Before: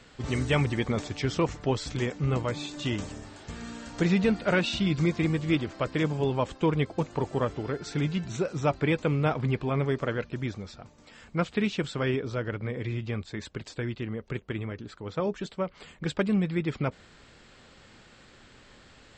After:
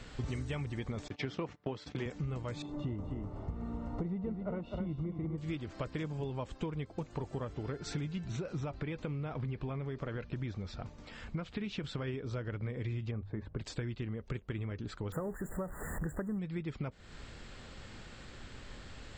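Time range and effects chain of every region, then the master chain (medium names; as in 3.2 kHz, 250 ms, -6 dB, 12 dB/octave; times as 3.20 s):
1.08–2.06 s: gate -38 dBFS, range -23 dB + band-pass 170–3800 Hz
2.62–5.38 s: Savitzky-Golay filter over 65 samples + delay 253 ms -8 dB
8.27–12.08 s: low-pass 5.4 kHz + compression 3:1, threshold -27 dBFS
13.11–13.59 s: low-pass 1.1 kHz + hum notches 50/100/150 Hz
15.12–16.39 s: jump at every zero crossing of -37 dBFS + brick-wall FIR band-stop 2–6.9 kHz
whole clip: bass shelf 100 Hz +11.5 dB; compression 10:1, threshold -36 dBFS; trim +1.5 dB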